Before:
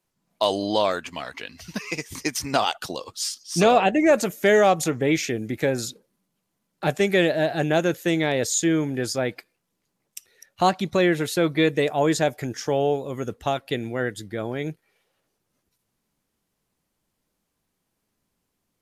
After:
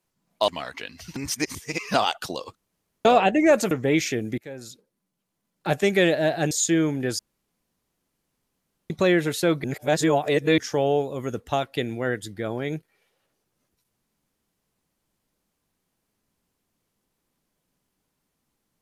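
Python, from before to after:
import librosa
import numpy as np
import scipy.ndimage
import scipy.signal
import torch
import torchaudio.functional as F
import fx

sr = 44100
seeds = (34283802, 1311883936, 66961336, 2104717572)

y = fx.edit(x, sr, fx.cut(start_s=0.48, length_s=0.6),
    fx.reverse_span(start_s=1.76, length_s=0.78),
    fx.room_tone_fill(start_s=3.15, length_s=0.5),
    fx.cut(start_s=4.31, length_s=0.57),
    fx.fade_in_from(start_s=5.55, length_s=1.4, floor_db=-21.0),
    fx.cut(start_s=7.68, length_s=0.77),
    fx.room_tone_fill(start_s=9.13, length_s=1.71),
    fx.reverse_span(start_s=11.58, length_s=0.94), tone=tone)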